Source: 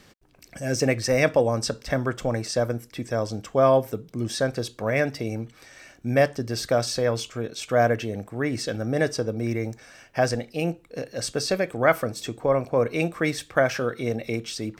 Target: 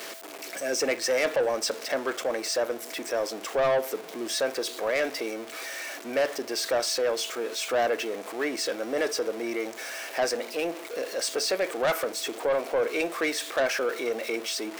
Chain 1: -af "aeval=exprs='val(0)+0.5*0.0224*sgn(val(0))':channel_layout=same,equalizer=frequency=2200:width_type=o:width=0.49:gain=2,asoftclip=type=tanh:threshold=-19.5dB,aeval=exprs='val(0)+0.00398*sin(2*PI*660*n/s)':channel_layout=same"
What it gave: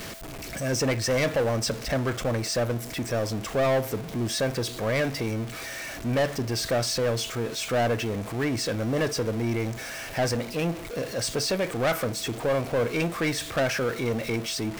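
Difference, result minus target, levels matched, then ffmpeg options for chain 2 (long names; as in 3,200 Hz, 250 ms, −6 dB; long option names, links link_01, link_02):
250 Hz band +5.5 dB
-af "aeval=exprs='val(0)+0.5*0.0224*sgn(val(0))':channel_layout=same,highpass=frequency=330:width=0.5412,highpass=frequency=330:width=1.3066,equalizer=frequency=2200:width_type=o:width=0.49:gain=2,asoftclip=type=tanh:threshold=-19.5dB,aeval=exprs='val(0)+0.00398*sin(2*PI*660*n/s)':channel_layout=same"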